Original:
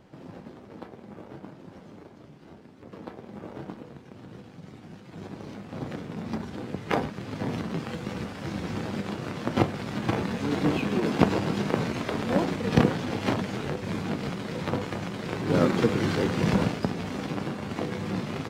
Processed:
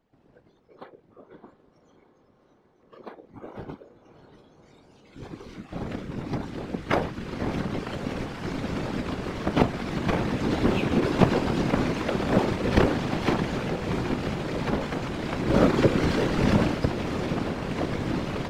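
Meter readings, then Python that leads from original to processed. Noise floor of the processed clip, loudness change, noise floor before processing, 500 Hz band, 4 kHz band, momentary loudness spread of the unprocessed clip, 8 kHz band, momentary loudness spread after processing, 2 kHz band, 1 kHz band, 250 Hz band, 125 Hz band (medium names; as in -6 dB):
-62 dBFS, +2.0 dB, -49 dBFS, +2.5 dB, +1.5 dB, 21 LU, +0.5 dB, 18 LU, +2.0 dB, +2.0 dB, +1.5 dB, +2.0 dB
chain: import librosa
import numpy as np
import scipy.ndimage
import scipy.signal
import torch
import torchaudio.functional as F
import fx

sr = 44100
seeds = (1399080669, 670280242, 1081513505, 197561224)

p1 = fx.high_shelf(x, sr, hz=7400.0, db=-4.0)
p2 = fx.noise_reduce_blind(p1, sr, reduce_db=18)
p3 = fx.whisperise(p2, sr, seeds[0])
p4 = p3 + fx.echo_diffused(p3, sr, ms=625, feedback_pct=79, wet_db=-14.0, dry=0)
y = F.gain(torch.from_numpy(p4), 2.0).numpy()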